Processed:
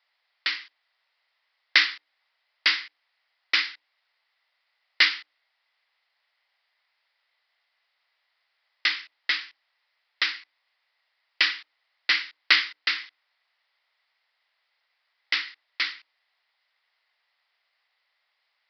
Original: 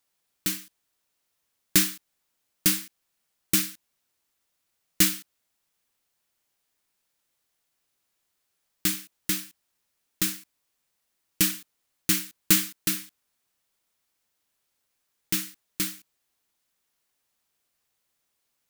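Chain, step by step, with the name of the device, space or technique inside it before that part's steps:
mains-hum notches 60/120/180/240/300/360/420/480/540 Hz
musical greeting card (downsampling to 11,025 Hz; high-pass filter 630 Hz 24 dB per octave; parametric band 2,000 Hz +10 dB 0.24 octaves)
level +7 dB

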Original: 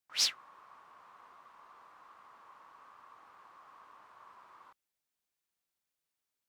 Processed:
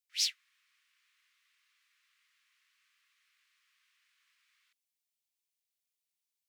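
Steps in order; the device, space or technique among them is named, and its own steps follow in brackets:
Butterworth high-pass 2,000 Hz 36 dB per octave
exciter from parts (in parallel at −12 dB: high-pass filter 2,600 Hz + soft clipping −36 dBFS, distortion −5 dB)
on the sum: level −2 dB

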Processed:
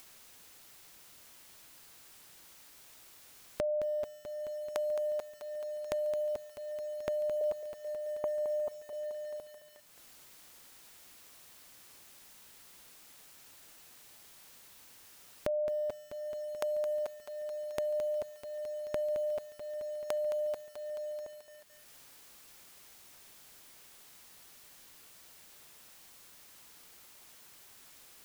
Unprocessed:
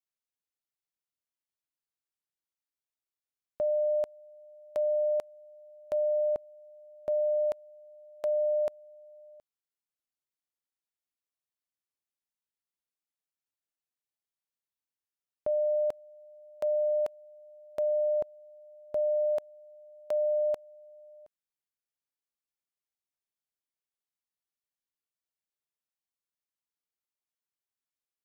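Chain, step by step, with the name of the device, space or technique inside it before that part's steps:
0:07.41–0:08.93: Butterworth low-pass 1,300 Hz 96 dB per octave
upward and downward compression (upward compression, threshold −33 dBFS; downward compressor 4 to 1, threshold −35 dBFS, peak gain reduction 7.5 dB)
feedback echo at a low word length 217 ms, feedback 80%, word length 9 bits, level −9.5 dB
level +3 dB

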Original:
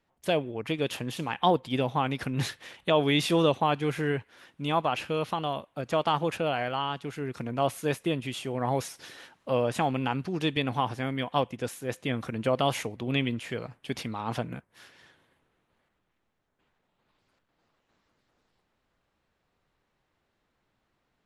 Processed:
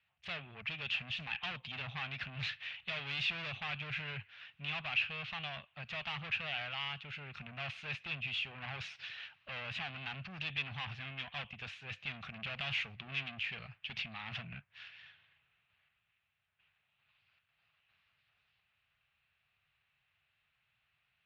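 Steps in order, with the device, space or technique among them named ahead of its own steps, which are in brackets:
dynamic equaliser 210 Hz, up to +8 dB, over −45 dBFS, Q 1.9
scooped metal amplifier (tube saturation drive 33 dB, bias 0.35; loudspeaker in its box 78–3,600 Hz, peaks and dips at 98 Hz +5 dB, 140 Hz +5 dB, 510 Hz −7 dB, 950 Hz −6 dB, 2,600 Hz +9 dB; guitar amp tone stack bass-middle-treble 10-0-10)
level +5 dB

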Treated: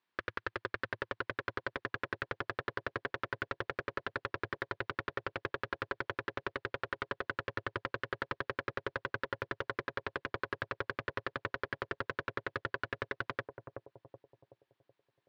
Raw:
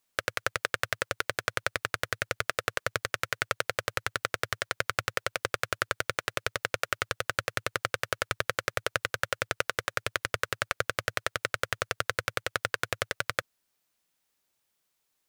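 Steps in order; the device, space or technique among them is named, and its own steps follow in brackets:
analogue delay pedal into a guitar amplifier (bucket-brigade delay 376 ms, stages 2,048, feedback 43%, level −5.5 dB; tube saturation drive 28 dB, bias 0.7; loudspeaker in its box 89–4,000 Hz, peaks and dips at 350 Hz +8 dB, 580 Hz −3 dB, 1,000 Hz +7 dB, 1,700 Hz +6 dB)

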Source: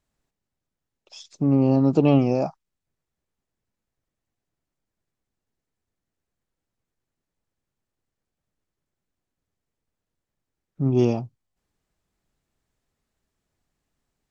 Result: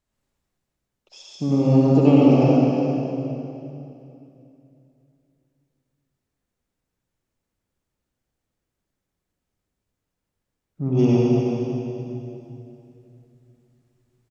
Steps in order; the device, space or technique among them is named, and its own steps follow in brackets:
cave (single-tap delay 361 ms −9.5 dB; convolution reverb RT60 2.8 s, pre-delay 59 ms, DRR −5 dB)
level −3 dB

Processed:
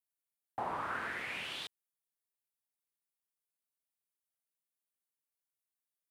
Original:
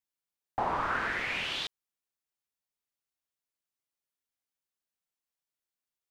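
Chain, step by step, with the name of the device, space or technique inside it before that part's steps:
budget condenser microphone (high-pass filter 87 Hz; high shelf with overshoot 7,700 Hz +6.5 dB, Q 1.5)
level −7 dB

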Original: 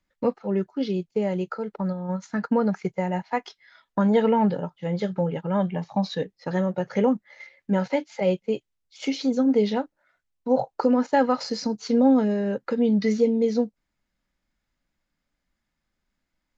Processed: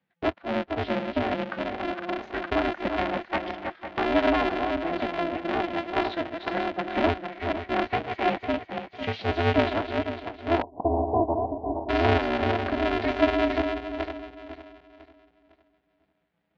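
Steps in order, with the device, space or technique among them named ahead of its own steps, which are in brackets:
feedback delay that plays each chunk backwards 251 ms, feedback 57%, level −5.5 dB
ring modulator pedal into a guitar cabinet (ring modulator with a square carrier 170 Hz; loudspeaker in its box 110–3,400 Hz, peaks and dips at 130 Hz −7 dB, 400 Hz −9 dB, 1,100 Hz −6 dB)
0:10.62–0:11.89: Butterworth low-pass 980 Hz 72 dB per octave

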